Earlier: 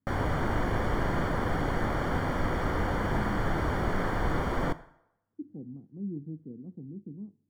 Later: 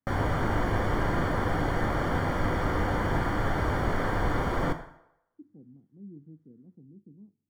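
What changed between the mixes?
speech -9.5 dB; background: send +8.0 dB

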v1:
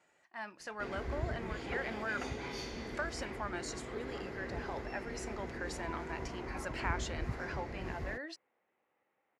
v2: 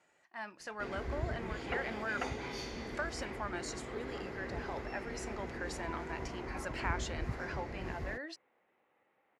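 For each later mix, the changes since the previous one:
second sound +5.5 dB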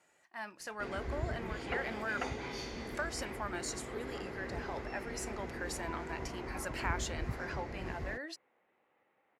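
speech: remove distance through air 58 m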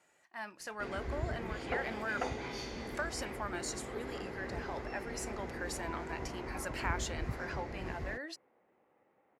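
second sound: add tilt shelf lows +7 dB, about 1.3 kHz

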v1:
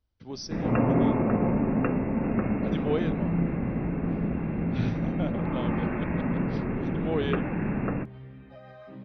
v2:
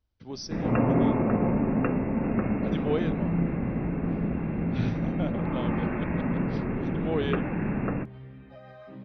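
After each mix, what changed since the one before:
no change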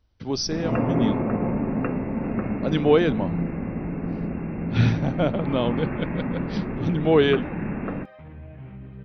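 speech +11.5 dB; second sound: entry +2.30 s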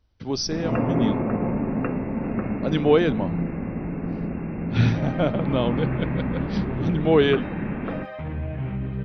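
second sound +11.5 dB

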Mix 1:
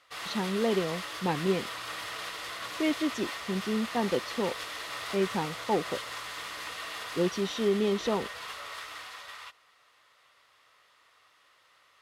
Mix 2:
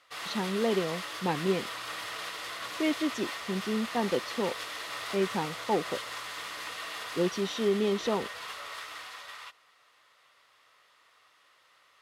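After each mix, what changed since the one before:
master: add bass shelf 64 Hz -11 dB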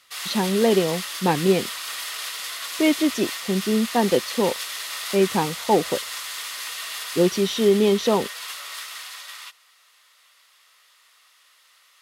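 speech +9.5 dB; background: add tilt EQ +4.5 dB/octave

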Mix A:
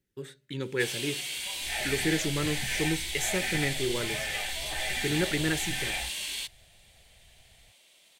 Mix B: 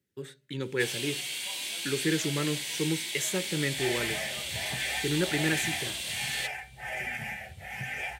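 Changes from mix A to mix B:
second sound: entry +2.10 s; master: add high-pass 74 Hz 24 dB/octave

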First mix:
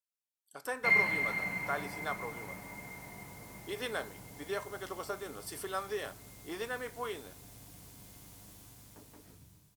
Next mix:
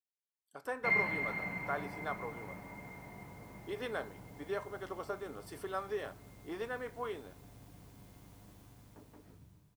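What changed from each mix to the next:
master: add peaking EQ 11 kHz -12.5 dB 2.9 oct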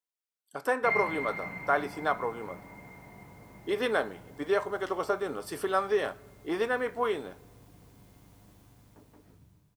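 speech +11.0 dB

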